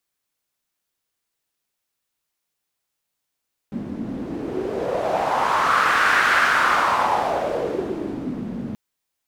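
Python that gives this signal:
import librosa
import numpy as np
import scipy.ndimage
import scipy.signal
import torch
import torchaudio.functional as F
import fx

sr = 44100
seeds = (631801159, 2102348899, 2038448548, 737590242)

y = fx.wind(sr, seeds[0], length_s=5.03, low_hz=220.0, high_hz=1500.0, q=3.7, gusts=1, swing_db=12.5)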